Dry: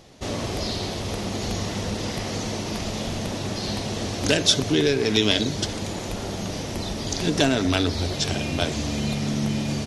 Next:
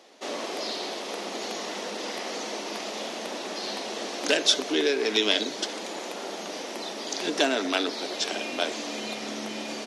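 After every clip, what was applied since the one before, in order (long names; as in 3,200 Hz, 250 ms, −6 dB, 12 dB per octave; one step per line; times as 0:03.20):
Bessel high-pass filter 420 Hz, order 8
high-shelf EQ 5,800 Hz −7 dB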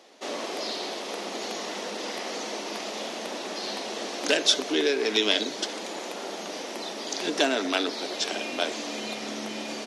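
no processing that can be heard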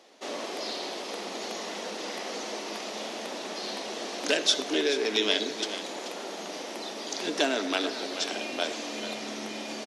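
single-tap delay 433 ms −11.5 dB
convolution reverb RT60 0.50 s, pre-delay 41 ms, DRR 16.5 dB
level −2.5 dB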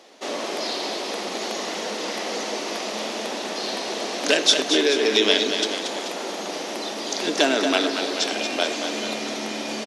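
single-tap delay 230 ms −7.5 dB
level +6.5 dB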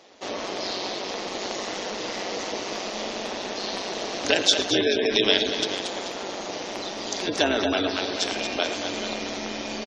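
single-tap delay 110 ms −13.5 dB
amplitude modulation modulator 190 Hz, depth 40%
gate on every frequency bin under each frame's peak −25 dB strong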